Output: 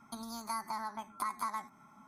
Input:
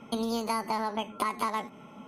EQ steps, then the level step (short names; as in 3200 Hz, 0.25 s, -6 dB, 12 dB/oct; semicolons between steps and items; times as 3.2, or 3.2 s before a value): tilt shelf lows -3.5 dB; bell 180 Hz -2.5 dB 1.6 oct; fixed phaser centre 1200 Hz, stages 4; -5.5 dB